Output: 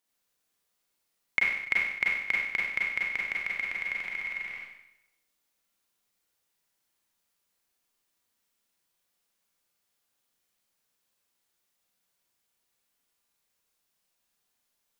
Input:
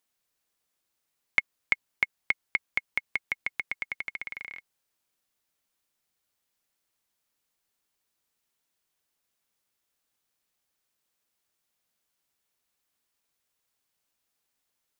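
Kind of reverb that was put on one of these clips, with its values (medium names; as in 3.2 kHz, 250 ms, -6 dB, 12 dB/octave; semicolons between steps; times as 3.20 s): Schroeder reverb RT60 0.83 s, combs from 32 ms, DRR -4 dB; trim -3.5 dB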